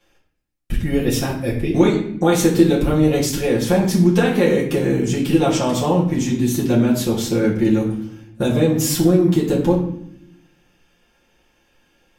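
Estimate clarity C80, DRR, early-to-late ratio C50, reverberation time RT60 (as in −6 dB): 9.5 dB, −6.0 dB, 6.0 dB, 0.70 s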